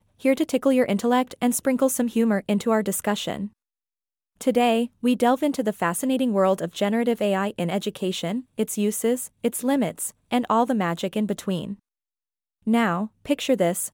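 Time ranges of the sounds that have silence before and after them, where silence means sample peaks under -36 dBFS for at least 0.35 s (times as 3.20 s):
4.41–11.74 s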